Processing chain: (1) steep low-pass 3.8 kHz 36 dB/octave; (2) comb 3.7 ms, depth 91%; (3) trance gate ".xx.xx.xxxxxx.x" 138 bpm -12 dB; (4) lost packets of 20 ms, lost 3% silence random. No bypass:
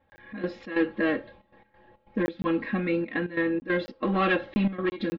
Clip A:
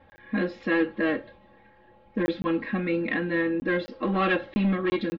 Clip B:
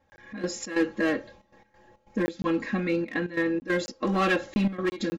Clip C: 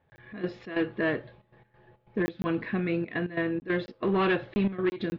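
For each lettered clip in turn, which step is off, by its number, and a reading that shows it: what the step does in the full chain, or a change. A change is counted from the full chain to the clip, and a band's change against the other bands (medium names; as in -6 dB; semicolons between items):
3, loudness change +1.0 LU; 1, 4 kHz band +2.5 dB; 2, 125 Hz band +2.5 dB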